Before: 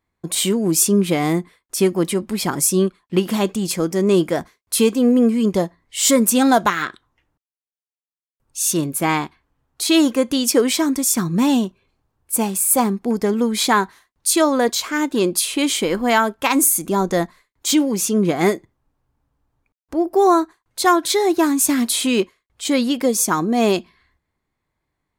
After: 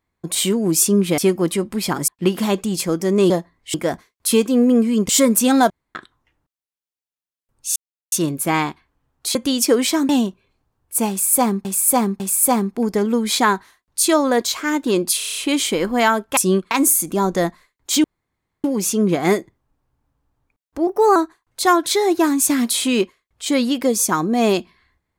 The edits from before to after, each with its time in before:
0:01.18–0:01.75: remove
0:02.65–0:02.99: move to 0:16.47
0:05.56–0:06.00: move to 0:04.21
0:06.61–0:06.86: fill with room tone
0:08.67: splice in silence 0.36 s
0:09.90–0:10.21: remove
0:10.95–0:11.47: remove
0:12.48–0:13.03: repeat, 3 plays
0:15.46: stutter 0.03 s, 7 plays
0:17.80: splice in room tone 0.60 s
0:20.03–0:20.35: play speed 111%

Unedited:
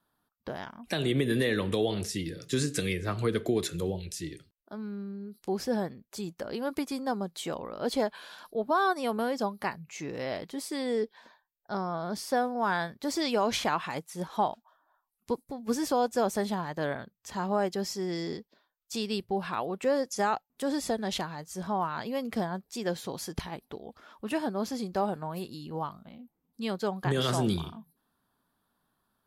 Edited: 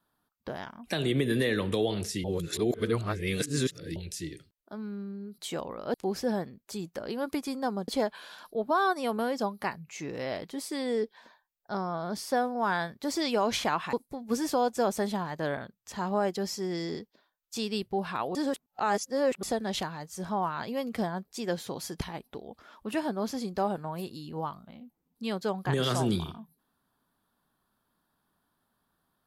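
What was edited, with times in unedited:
0:02.24–0:03.96: reverse
0:07.32–0:07.88: move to 0:05.38
0:13.93–0:15.31: remove
0:19.73–0:20.81: reverse

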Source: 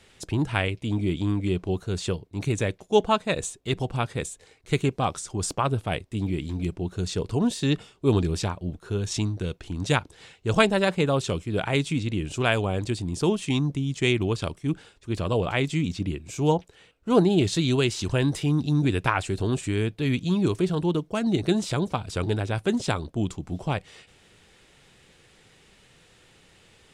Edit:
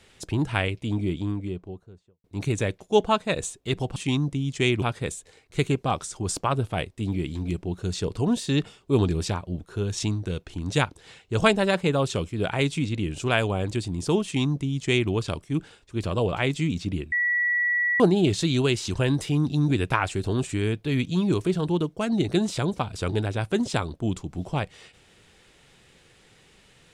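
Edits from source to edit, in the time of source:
0:00.74–0:02.24: fade out and dull
0:13.38–0:14.24: duplicate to 0:03.96
0:16.26–0:17.14: beep over 1,940 Hz −20.5 dBFS

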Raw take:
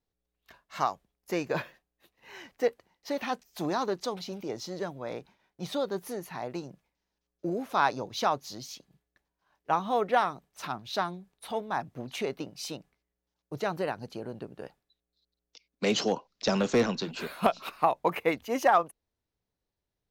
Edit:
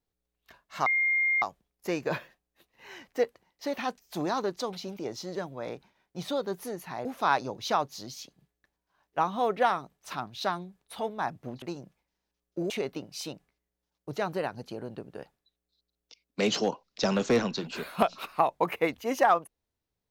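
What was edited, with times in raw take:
0:00.86: insert tone 2,120 Hz −22.5 dBFS 0.56 s
0:06.49–0:07.57: move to 0:12.14

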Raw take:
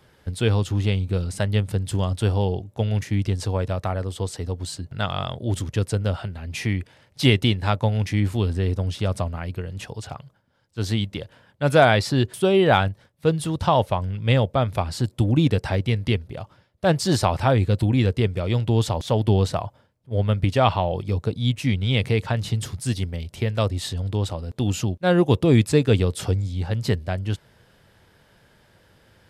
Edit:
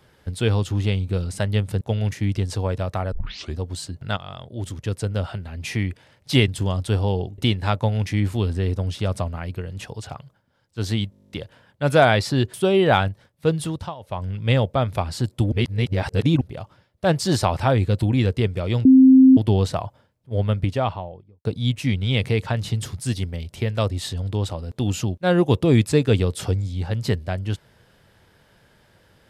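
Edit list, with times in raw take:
0:01.81–0:02.71: move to 0:07.38
0:04.02: tape start 0.45 s
0:05.07–0:06.26: fade in, from −12 dB
0:11.11: stutter 0.02 s, 11 plays
0:13.45–0:14.10: duck −21.5 dB, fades 0.30 s
0:15.32–0:16.21: reverse
0:18.65–0:19.17: beep over 262 Hz −7 dBFS
0:20.19–0:21.25: fade out and dull

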